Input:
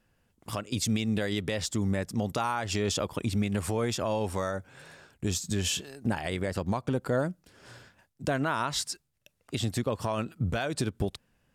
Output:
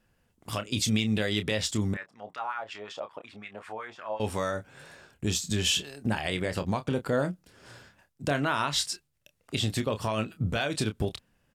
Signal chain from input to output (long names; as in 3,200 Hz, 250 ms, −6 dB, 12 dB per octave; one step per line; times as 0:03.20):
dynamic equaliser 3,000 Hz, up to +6 dB, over −49 dBFS, Q 1.1
0:01.94–0:04.20: LFO wah 5.4 Hz 660–1,800 Hz, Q 2.9
double-tracking delay 28 ms −9.5 dB